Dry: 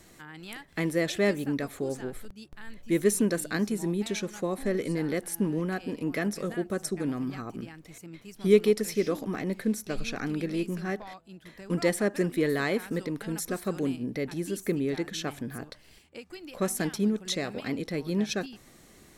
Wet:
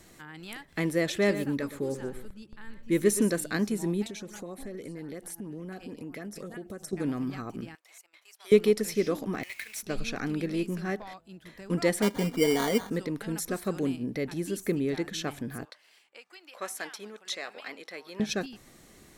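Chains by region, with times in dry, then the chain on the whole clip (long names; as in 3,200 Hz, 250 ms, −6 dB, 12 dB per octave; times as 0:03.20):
0:01.10–0:03.31: Butterworth band-reject 700 Hz, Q 6.5 + single-tap delay 119 ms −12.5 dB + one half of a high-frequency compander decoder only
0:04.04–0:06.93: auto-filter notch saw up 9.5 Hz 790–5,200 Hz + downward compressor 5 to 1, threshold −37 dBFS
0:07.75–0:08.52: high-pass filter 700 Hz 24 dB per octave + transient designer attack −5 dB, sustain −11 dB
0:09.43–0:09.83: high-pass with resonance 2,300 Hz, resonance Q 4.3 + log-companded quantiser 4 bits
0:12.02–0:12.90: parametric band 3,300 Hz −14 dB 0.89 octaves + comb filter 4.2 ms, depth 69% + sample-rate reduction 2,600 Hz
0:15.65–0:18.20: high-pass filter 810 Hz + high-shelf EQ 5,100 Hz −8 dB
whole clip: no processing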